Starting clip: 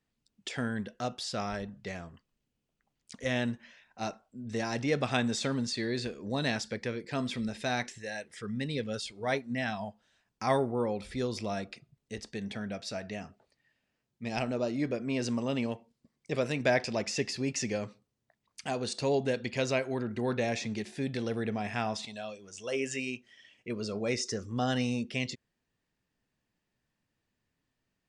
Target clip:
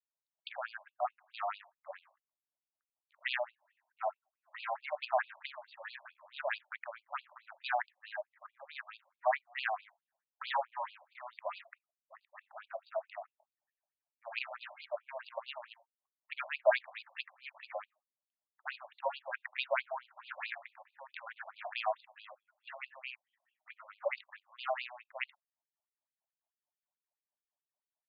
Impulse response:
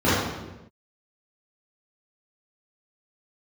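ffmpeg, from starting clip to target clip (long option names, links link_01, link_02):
-af "adynamicsmooth=sensitivity=4.5:basefreq=560,afftfilt=real='re*between(b*sr/1024,770*pow(3500/770,0.5+0.5*sin(2*PI*4.6*pts/sr))/1.41,770*pow(3500/770,0.5+0.5*sin(2*PI*4.6*pts/sr))*1.41)':imag='im*between(b*sr/1024,770*pow(3500/770,0.5+0.5*sin(2*PI*4.6*pts/sr))/1.41,770*pow(3500/770,0.5+0.5*sin(2*PI*4.6*pts/sr))*1.41)':win_size=1024:overlap=0.75,volume=5dB"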